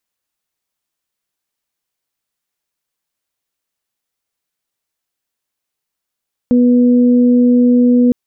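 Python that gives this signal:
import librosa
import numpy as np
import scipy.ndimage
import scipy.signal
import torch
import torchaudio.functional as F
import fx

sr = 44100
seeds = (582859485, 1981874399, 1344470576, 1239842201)

y = fx.additive_steady(sr, length_s=1.61, hz=245.0, level_db=-7, upper_db=(-10.0,))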